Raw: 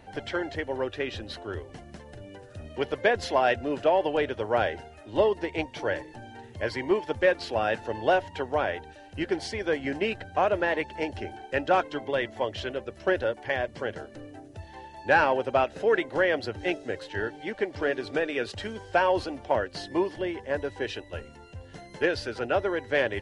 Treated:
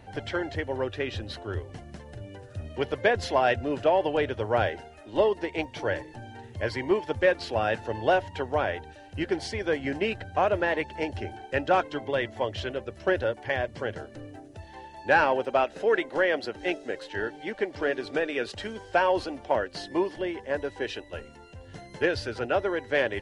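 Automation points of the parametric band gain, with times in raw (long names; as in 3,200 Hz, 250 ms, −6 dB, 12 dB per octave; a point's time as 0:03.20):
parametric band 100 Hz 0.91 octaves
+7 dB
from 0:04.69 −5 dB
from 0:05.64 +5 dB
from 0:14.36 −2.5 dB
from 0:15.45 −13.5 dB
from 0:17.13 −5 dB
from 0:21.67 +5 dB
from 0:22.45 −2.5 dB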